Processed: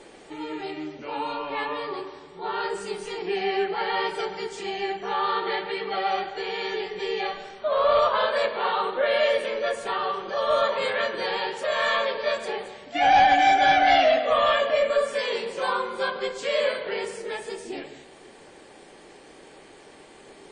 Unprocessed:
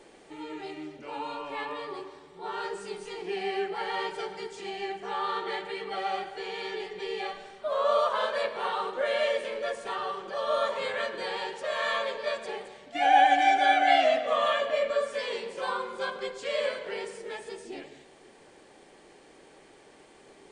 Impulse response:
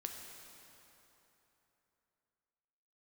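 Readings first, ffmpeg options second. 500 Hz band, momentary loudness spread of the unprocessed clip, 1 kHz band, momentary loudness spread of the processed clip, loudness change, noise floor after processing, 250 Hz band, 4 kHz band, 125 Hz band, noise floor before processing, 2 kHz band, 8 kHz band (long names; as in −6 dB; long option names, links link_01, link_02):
+5.0 dB, 18 LU, +4.0 dB, 16 LU, +4.5 dB, −49 dBFS, +5.0 dB, +5.0 dB, can't be measured, −55 dBFS, +4.5 dB, +4.5 dB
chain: -filter_complex "[0:a]aeval=exprs='0.355*(cos(1*acos(clip(val(0)/0.355,-1,1)))-cos(1*PI/2))+0.00447*(cos(4*acos(clip(val(0)/0.355,-1,1)))-cos(4*PI/2))+0.0562*(cos(5*acos(clip(val(0)/0.355,-1,1)))-cos(5*PI/2))':channel_layout=same,asplit=2[link_01][link_02];[1:a]atrim=start_sample=2205,atrim=end_sample=6174[link_03];[link_02][link_03]afir=irnorm=-1:irlink=0,volume=-16dB[link_04];[link_01][link_04]amix=inputs=2:normalize=0" -ar 22050 -c:a wmav2 -b:a 32k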